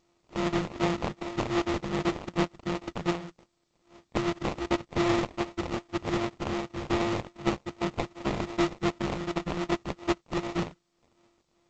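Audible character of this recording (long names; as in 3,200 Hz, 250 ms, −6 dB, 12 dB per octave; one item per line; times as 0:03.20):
a buzz of ramps at a fixed pitch in blocks of 128 samples
phaser sweep stages 2, 2.6 Hz, lowest notch 410–4,500 Hz
aliases and images of a low sample rate 1,600 Hz, jitter 20%
G.722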